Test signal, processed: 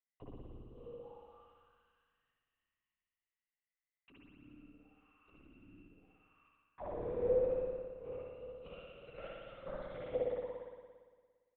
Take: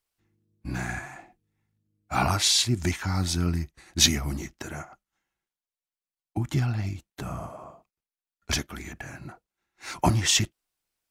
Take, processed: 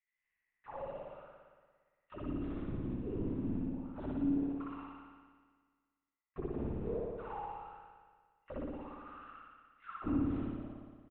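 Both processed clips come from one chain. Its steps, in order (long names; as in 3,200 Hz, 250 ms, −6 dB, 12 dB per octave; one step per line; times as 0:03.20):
samples in bit-reversed order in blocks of 128 samples
repeating echo 154 ms, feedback 32%, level −22 dB
envelope filter 280–2,000 Hz, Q 21, down, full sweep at −23 dBFS
linear-prediction vocoder at 8 kHz whisper
spring reverb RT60 1.6 s, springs 57 ms, chirp 30 ms, DRR −5 dB
level +9.5 dB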